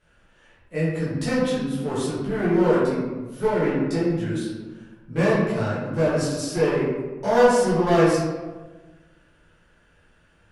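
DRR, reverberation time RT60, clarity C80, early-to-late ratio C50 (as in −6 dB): −10.0 dB, 1.3 s, 2.5 dB, −0.5 dB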